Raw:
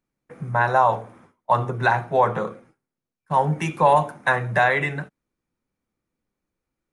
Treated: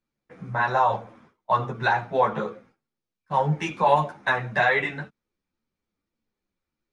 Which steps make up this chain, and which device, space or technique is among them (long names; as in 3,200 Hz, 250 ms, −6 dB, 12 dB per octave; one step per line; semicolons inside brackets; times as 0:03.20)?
string-machine ensemble chorus (string-ensemble chorus; low-pass filter 5,600 Hz 12 dB per octave)
parametric band 4,400 Hz +5.5 dB 1.5 octaves